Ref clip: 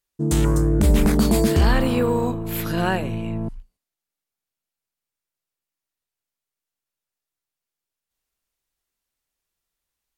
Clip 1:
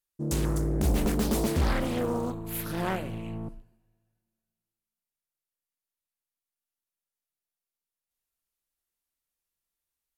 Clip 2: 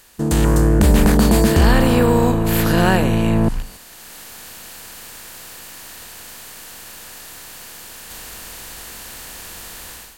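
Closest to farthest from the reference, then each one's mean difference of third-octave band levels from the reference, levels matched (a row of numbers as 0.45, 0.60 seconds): 1, 2; 2.5, 4.5 decibels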